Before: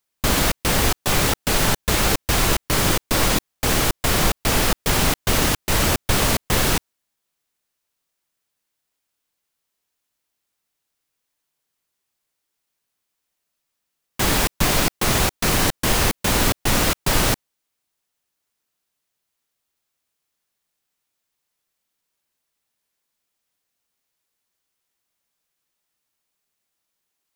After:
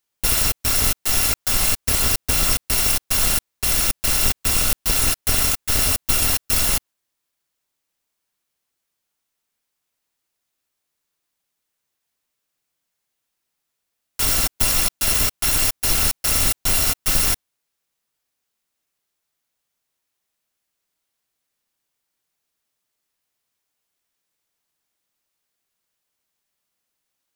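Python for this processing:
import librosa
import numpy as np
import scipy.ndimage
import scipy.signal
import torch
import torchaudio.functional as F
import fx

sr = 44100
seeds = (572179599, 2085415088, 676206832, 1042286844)

y = fx.bit_reversed(x, sr, seeds[0], block=256)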